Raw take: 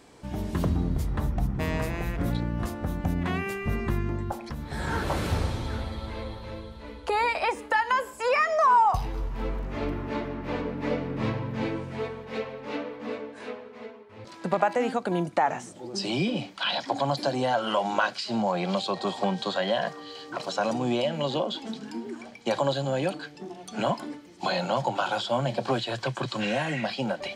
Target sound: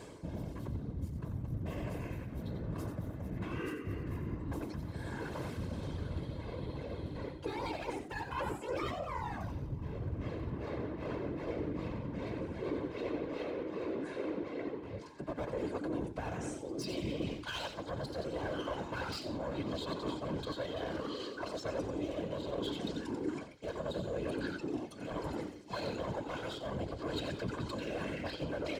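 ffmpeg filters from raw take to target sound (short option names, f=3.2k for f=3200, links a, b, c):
-filter_complex "[0:a]atempo=0.95,aeval=exprs='clip(val(0),-1,0.0335)':c=same,aecho=1:1:1.9:0.74,asplit=5[a][b][c][d][e];[b]adelay=90,afreqshift=-110,volume=-7.5dB[f];[c]adelay=180,afreqshift=-220,volume=-17.4dB[g];[d]adelay=270,afreqshift=-330,volume=-27.3dB[h];[e]adelay=360,afreqshift=-440,volume=-37.2dB[i];[a][f][g][h][i]amix=inputs=5:normalize=0,tremolo=f=0.7:d=0.45,lowshelf=f=440:g=6.5,areverse,acompressor=threshold=-42dB:ratio=4,areverse,afftfilt=real='hypot(re,im)*cos(2*PI*random(0))':imag='hypot(re,im)*sin(2*PI*random(1))':win_size=512:overlap=0.75,highpass=55,equalizer=f=300:w=4:g=8.5,volume=9dB"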